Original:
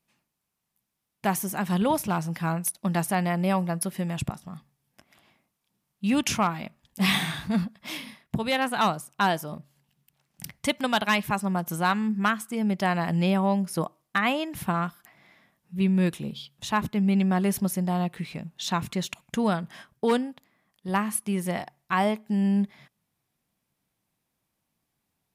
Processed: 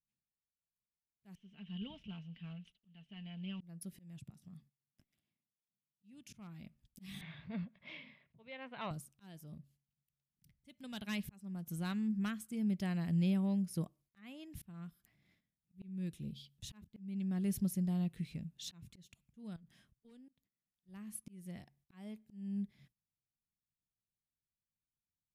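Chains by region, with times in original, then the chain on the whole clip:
1.35–3.61 block floating point 5-bit + ladder low-pass 3100 Hz, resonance 85% + comb 4.5 ms, depth 62%
4.19–6.33 HPF 120 Hz + compressor 1.5:1, threshold -47 dBFS
7.21–8.91 speaker cabinet 170–3300 Hz, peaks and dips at 210 Hz -8 dB, 300 Hz -8 dB, 590 Hz +9 dB, 1000 Hz +8 dB, 2200 Hz +7 dB + upward compressor, threshold -40 dBFS
19.56–20.29 auto swell 0.543 s + compressor, threshold -44 dBFS
whole clip: gate -57 dBFS, range -14 dB; passive tone stack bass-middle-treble 10-0-1; auto swell 0.586 s; gain +8 dB

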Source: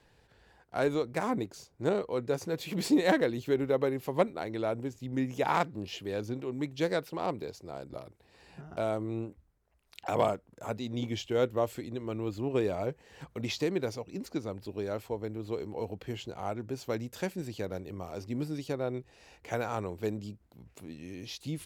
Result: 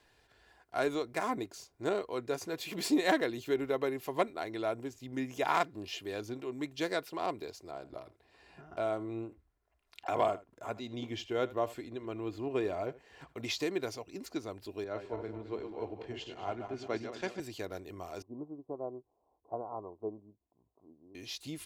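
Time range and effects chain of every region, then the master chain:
7.71–13.38 high shelf 4300 Hz -9.5 dB + echo 79 ms -18.5 dB
14.84–17.4 regenerating reverse delay 0.108 s, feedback 62%, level -6 dB + air absorption 120 m + three-band expander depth 70%
18.22–21.15 steep low-pass 1100 Hz 72 dB/oct + low shelf 130 Hz -8.5 dB + upward expander, over -50 dBFS
whole clip: low shelf 440 Hz -8 dB; comb 2.9 ms, depth 37%

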